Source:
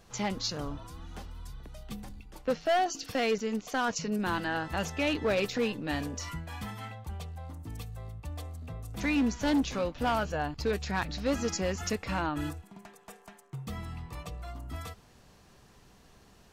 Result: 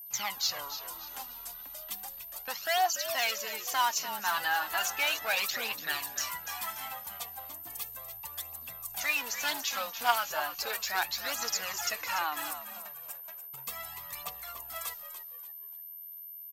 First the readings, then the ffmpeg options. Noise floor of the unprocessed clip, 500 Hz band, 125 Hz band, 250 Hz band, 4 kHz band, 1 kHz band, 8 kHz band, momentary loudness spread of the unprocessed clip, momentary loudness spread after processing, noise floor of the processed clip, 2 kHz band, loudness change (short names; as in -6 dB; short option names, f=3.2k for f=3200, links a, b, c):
-59 dBFS, -8.5 dB, -22.5 dB, -22.5 dB, +5.5 dB, +2.0 dB, +7.0 dB, 17 LU, 13 LU, -46 dBFS, +3.5 dB, -0.5 dB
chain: -filter_complex "[0:a]aphaser=in_gain=1:out_gain=1:delay=4.5:decay=0.6:speed=0.35:type=triangular,agate=range=-33dB:threshold=-42dB:ratio=3:detection=peak,lowshelf=f=580:t=q:w=1.5:g=-7.5,acrossover=split=630|4000[a][b][c];[a]acompressor=threshold=-48dB:ratio=6[d];[c]alimiter=level_in=6.5dB:limit=-24dB:level=0:latency=1:release=441,volume=-6.5dB[e];[d][b][e]amix=inputs=3:normalize=0,aemphasis=mode=production:type=bsi,aeval=exprs='val(0)+0.00708*sin(2*PI*13000*n/s)':c=same,asplit=2[f][g];[g]asplit=4[h][i][j][k];[h]adelay=290,afreqshift=-81,volume=-11dB[l];[i]adelay=580,afreqshift=-162,volume=-20.4dB[m];[j]adelay=870,afreqshift=-243,volume=-29.7dB[n];[k]adelay=1160,afreqshift=-324,volume=-39.1dB[o];[l][m][n][o]amix=inputs=4:normalize=0[p];[f][p]amix=inputs=2:normalize=0"